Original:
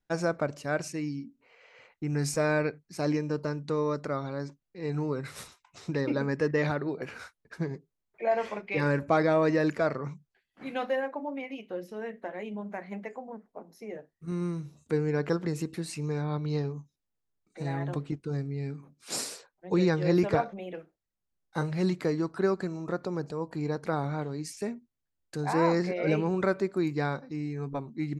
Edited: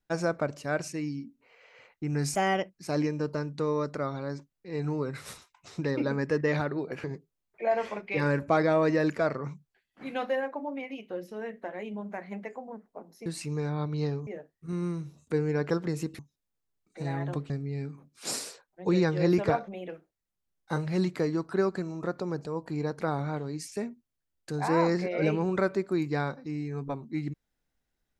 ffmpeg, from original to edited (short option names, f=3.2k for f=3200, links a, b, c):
-filter_complex "[0:a]asplit=8[a][b][c][d][e][f][g][h];[a]atrim=end=2.354[i];[b]atrim=start=2.35:end=2.84,asetpts=PTS-STARTPTS,asetrate=55566,aresample=44100[j];[c]atrim=start=2.836:end=7.142[k];[d]atrim=start=7.638:end=13.862[l];[e]atrim=start=15.778:end=16.792[m];[f]atrim=start=13.858:end=15.782[n];[g]atrim=start=16.788:end=18.102[o];[h]atrim=start=18.348[p];[i][j]acrossfade=d=0.004:c1=hsin:c2=hsin[q];[q][k]acrossfade=d=0.004:c1=hsin:c2=hsin[r];[r][l]acrossfade=d=0.004:c1=hsin:c2=hsin[s];[s][m]acrossfade=d=0.004:c1=hsin:c2=hsin[t];[t][n]acrossfade=d=0.004:c1=hsin:c2=hsin[u];[u][o]acrossfade=d=0.004:c1=hsin:c2=hsin[v];[v][p]acrossfade=d=0.004:c1=hsin:c2=hsin"